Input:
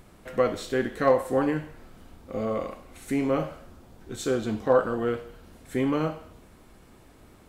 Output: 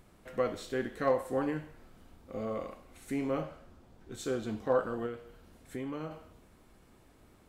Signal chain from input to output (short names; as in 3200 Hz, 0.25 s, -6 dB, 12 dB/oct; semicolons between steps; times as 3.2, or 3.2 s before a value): 3.4–4.12 high shelf 8600 Hz -8 dB; 5.06–6.11 compressor 2:1, threshold -32 dBFS, peak gain reduction 6.5 dB; gain -7.5 dB